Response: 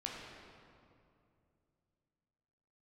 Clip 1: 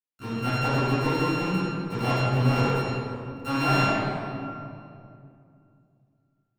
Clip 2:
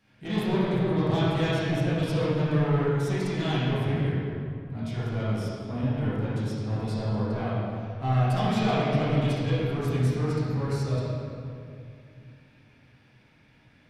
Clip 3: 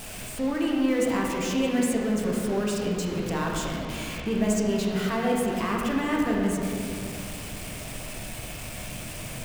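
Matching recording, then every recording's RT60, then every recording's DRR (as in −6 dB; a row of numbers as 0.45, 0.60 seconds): 3; 2.5, 2.5, 2.5 seconds; −18.0, −11.0, −3.0 decibels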